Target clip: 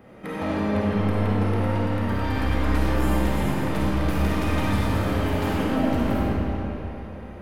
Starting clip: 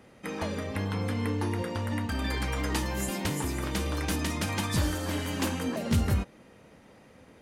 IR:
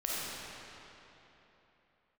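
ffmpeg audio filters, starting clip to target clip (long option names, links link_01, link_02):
-filter_complex "[0:a]equalizer=frequency=6700:width_type=o:width=2.2:gain=-14.5,asoftclip=type=tanh:threshold=-32.5dB[link_01];[1:a]atrim=start_sample=2205[link_02];[link_01][link_02]afir=irnorm=-1:irlink=0,volume=6.5dB"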